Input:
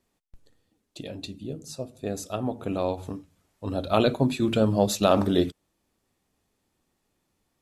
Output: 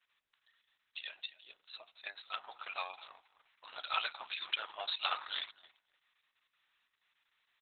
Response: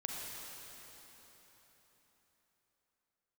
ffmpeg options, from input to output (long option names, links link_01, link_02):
-filter_complex "[0:a]highpass=frequency=1300:width=0.5412,highpass=frequency=1300:width=1.3066,highshelf=frequency=2600:gain=-3,acompressor=threshold=-39dB:ratio=2.5,asplit=2[link_01][link_02];[link_02]adelay=262,lowpass=frequency=1700:poles=1,volume=-14dB,asplit=2[link_03][link_04];[link_04]adelay=262,lowpass=frequency=1700:poles=1,volume=0.17[link_05];[link_01][link_03][link_05]amix=inputs=3:normalize=0,volume=6.5dB" -ar 48000 -c:a libopus -b:a 6k